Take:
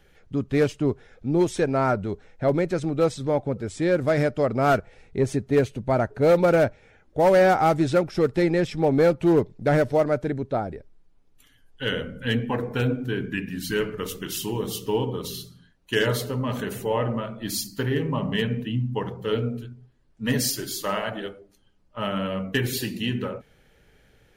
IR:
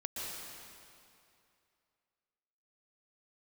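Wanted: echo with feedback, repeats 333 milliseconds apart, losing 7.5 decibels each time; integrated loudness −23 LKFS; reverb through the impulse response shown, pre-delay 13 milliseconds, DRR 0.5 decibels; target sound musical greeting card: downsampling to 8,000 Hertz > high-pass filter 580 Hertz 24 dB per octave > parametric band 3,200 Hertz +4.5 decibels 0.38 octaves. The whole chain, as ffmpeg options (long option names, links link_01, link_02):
-filter_complex "[0:a]aecho=1:1:333|666|999|1332|1665:0.422|0.177|0.0744|0.0312|0.0131,asplit=2[link_01][link_02];[1:a]atrim=start_sample=2205,adelay=13[link_03];[link_02][link_03]afir=irnorm=-1:irlink=0,volume=-2.5dB[link_04];[link_01][link_04]amix=inputs=2:normalize=0,aresample=8000,aresample=44100,highpass=frequency=580:width=0.5412,highpass=frequency=580:width=1.3066,equalizer=frequency=3200:width_type=o:width=0.38:gain=4.5,volume=3dB"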